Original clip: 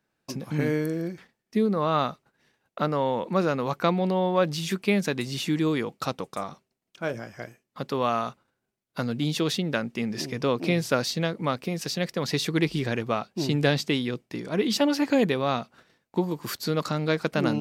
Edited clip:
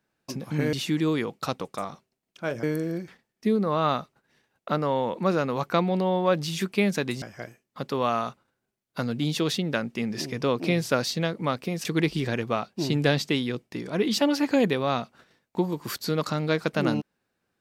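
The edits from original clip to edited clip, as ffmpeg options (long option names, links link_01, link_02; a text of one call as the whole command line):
ffmpeg -i in.wav -filter_complex "[0:a]asplit=5[link_01][link_02][link_03][link_04][link_05];[link_01]atrim=end=0.732[link_06];[link_02]atrim=start=5.318:end=7.222[link_07];[link_03]atrim=start=0.728:end=5.322[link_08];[link_04]atrim=start=7.218:end=11.852[link_09];[link_05]atrim=start=12.438[link_10];[link_06][link_07]acrossfade=duration=0.004:curve1=hsin:curve2=hsin[link_11];[link_11][link_08]acrossfade=duration=0.004:curve1=hsin:curve2=hsin[link_12];[link_12][link_09]acrossfade=duration=0.004:curve1=hsin:curve2=hsin[link_13];[link_13][link_10]acrossfade=duration=0.004:curve1=hsin:curve2=hsin" out.wav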